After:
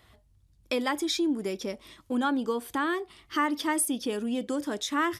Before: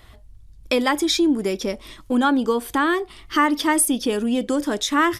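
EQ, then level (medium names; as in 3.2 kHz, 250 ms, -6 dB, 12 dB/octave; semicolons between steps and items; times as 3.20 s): high-pass 72 Hz 12 dB/octave; -8.5 dB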